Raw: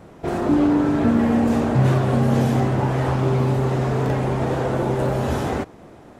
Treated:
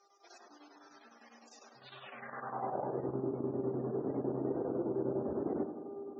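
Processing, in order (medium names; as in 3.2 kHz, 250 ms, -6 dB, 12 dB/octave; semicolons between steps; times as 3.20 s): bass shelf 460 Hz -4 dB; reverse; compression, threshold -25 dBFS, peak gain reduction 9 dB; reverse; mains buzz 400 Hz, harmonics 3, -43 dBFS -4 dB/octave; square tremolo 9.9 Hz, depth 65%, duty 75%; on a send: tape echo 85 ms, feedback 79%, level -7 dB, low-pass 1.6 kHz; on the sum: band-pass sweep 5.6 kHz -> 330 Hz, 1.75–3.08 s; loudest bins only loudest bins 64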